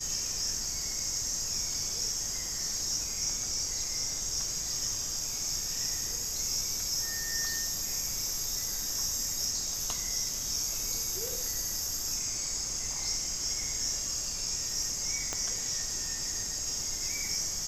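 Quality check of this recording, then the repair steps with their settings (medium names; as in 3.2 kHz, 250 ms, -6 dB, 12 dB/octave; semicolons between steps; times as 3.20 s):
15.33 s: pop -17 dBFS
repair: de-click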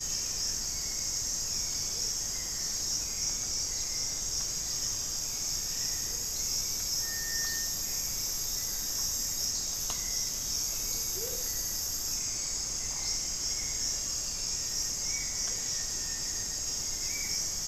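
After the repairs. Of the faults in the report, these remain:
15.33 s: pop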